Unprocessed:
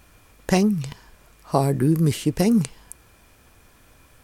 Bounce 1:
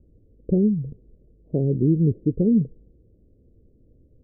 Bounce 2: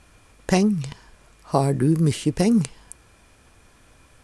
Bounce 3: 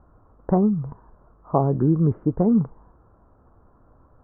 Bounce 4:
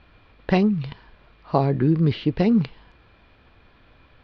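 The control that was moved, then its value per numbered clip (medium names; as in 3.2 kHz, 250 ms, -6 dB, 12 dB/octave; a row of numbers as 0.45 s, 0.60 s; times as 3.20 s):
steep low-pass, frequency: 500 Hz, 11 kHz, 1.3 kHz, 4.3 kHz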